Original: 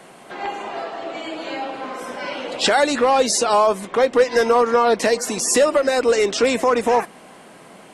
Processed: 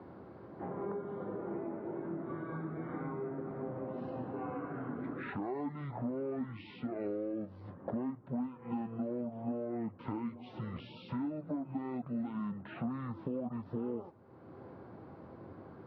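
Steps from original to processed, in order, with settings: compression 6:1, threshold -30 dBFS, peak gain reduction 18 dB; band-pass 150–2400 Hz; speed mistake 15 ips tape played at 7.5 ips; trim -6 dB

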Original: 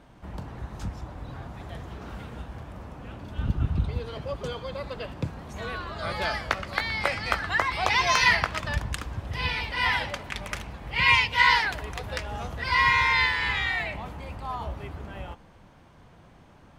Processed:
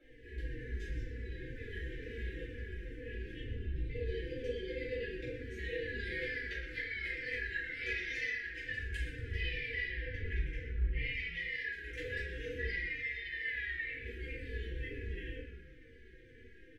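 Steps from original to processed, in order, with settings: 9.85–11.02 s: RIAA curve playback; FFT band-reject 520–1600 Hz; three-band isolator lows -17 dB, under 590 Hz, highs -24 dB, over 2 kHz; compression 16:1, threshold -45 dBFS, peak gain reduction 23 dB; static phaser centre 420 Hz, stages 4; on a send: frequency-shifting echo 120 ms, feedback 34%, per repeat -110 Hz, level -11 dB; on the sum: simulated room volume 150 m³, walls mixed, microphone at 2.9 m; endless flanger 3.3 ms -2.1 Hz; trim +4.5 dB

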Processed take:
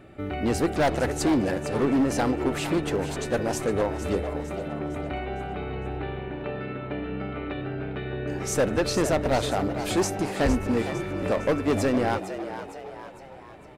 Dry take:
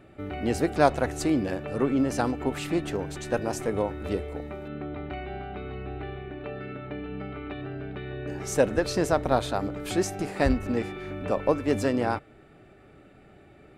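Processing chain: overload inside the chain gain 21.5 dB; frequency-shifting echo 457 ms, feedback 49%, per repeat +90 Hz, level -11 dB; trim +3.5 dB

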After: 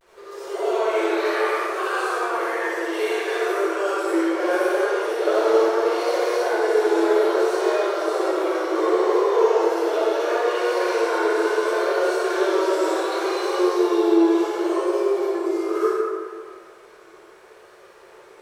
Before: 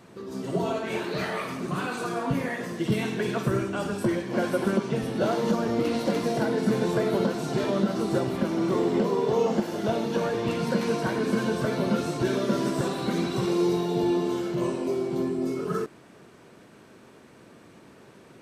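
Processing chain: in parallel at -5.5 dB: sine folder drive 5 dB, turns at -13.5 dBFS; on the sum: rippled Chebyshev high-pass 350 Hz, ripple 3 dB; vibrato 0.69 Hz 69 cents; crossover distortion -55 dBFS; reverberation RT60 2.0 s, pre-delay 47 ms, DRR -9.5 dB; trim -8 dB

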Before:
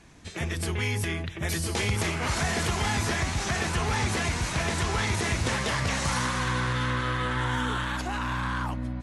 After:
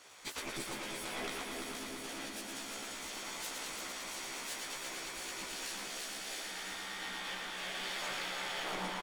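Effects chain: comb filter that takes the minimum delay 0.88 ms; spectral gate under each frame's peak -15 dB weak; 1.43–2.57 s: peaking EQ 230 Hz +15 dB 1.1 oct; compressor with a negative ratio -43 dBFS, ratio -1; doubling 15 ms -2 dB; multi-head delay 114 ms, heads first and third, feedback 75%, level -6 dB; trim -4.5 dB

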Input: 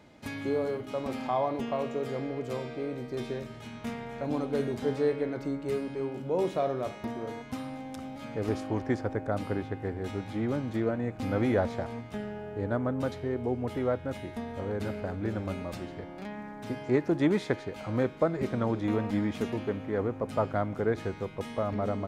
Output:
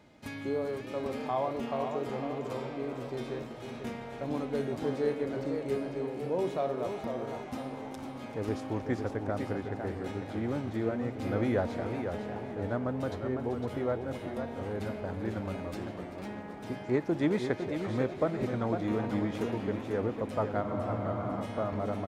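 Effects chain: frequency-shifting echo 387 ms, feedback 63%, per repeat +99 Hz, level -15 dB; spectral freeze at 20.65 s, 0.77 s; modulated delay 502 ms, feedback 37%, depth 131 cents, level -7 dB; trim -3 dB

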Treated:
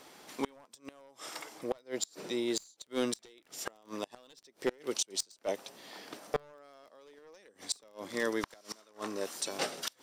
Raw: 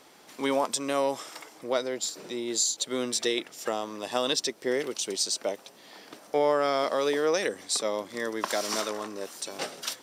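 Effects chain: one-sided wavefolder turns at -20.5 dBFS; inverted gate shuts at -19 dBFS, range -30 dB; crackle 12 per s -50 dBFS

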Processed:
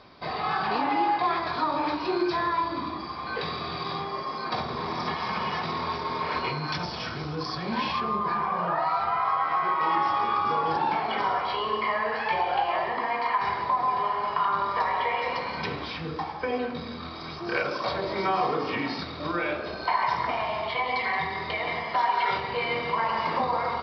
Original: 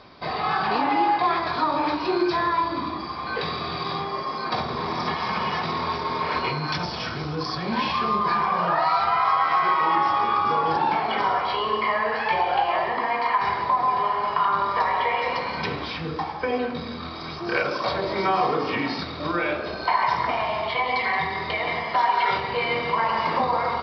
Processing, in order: 8.00–9.81 s: treble shelf 3 kHz -11 dB; trim -3.5 dB

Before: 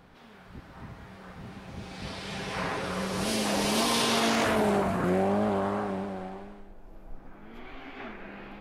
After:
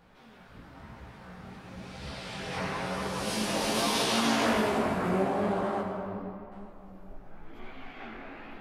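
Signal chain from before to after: 5.81–6.52 s: brick-wall FIR band-stop 300–12000 Hz; hum notches 50/100/150/200/250/300/350/400 Hz; on a send at -2.5 dB: reverberation RT60 2.9 s, pre-delay 47 ms; on the sum: chorus voices 2, 0.98 Hz, delay 18 ms, depth 4.2 ms

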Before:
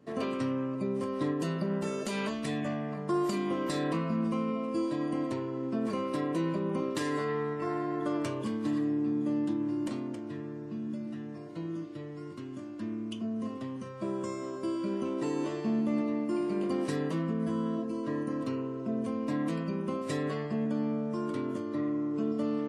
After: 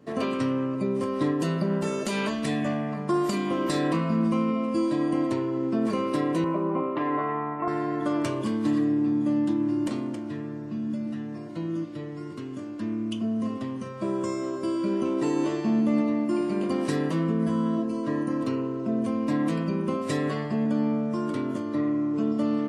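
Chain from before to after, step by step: 6.44–7.68 s: cabinet simulation 170–2300 Hz, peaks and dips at 210 Hz -7 dB, 460 Hz -4 dB, 690 Hz +7 dB, 1.1 kHz +5 dB, 1.7 kHz -7 dB; FDN reverb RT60 1.9 s, high-frequency decay 0.75×, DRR 16.5 dB; trim +5.5 dB

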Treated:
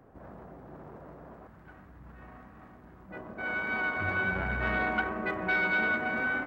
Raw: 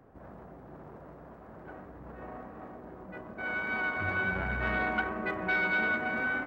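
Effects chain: 1.47–3.11 s: peaking EQ 500 Hz -13 dB 2.1 oct; trim +1 dB

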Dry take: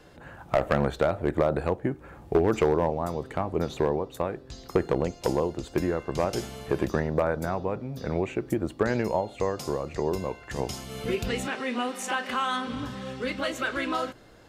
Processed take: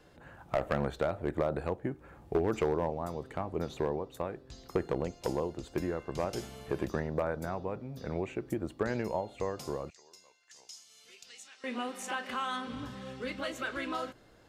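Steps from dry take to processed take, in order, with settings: 9.90–11.64 s: band-pass filter 6 kHz, Q 1.8; trim -7 dB

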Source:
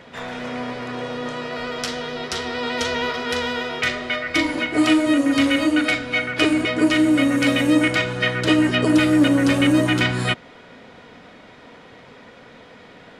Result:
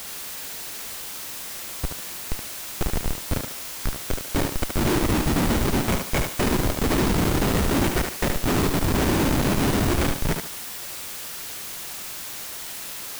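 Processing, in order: 3.51–3.96 s: low-pass 4.2 kHz -> 1.7 kHz 6 dB/octave; whisper effect; Schmitt trigger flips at -14.5 dBFS; added noise white -36 dBFS; thinning echo 73 ms, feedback 31%, high-pass 180 Hz, level -5 dB

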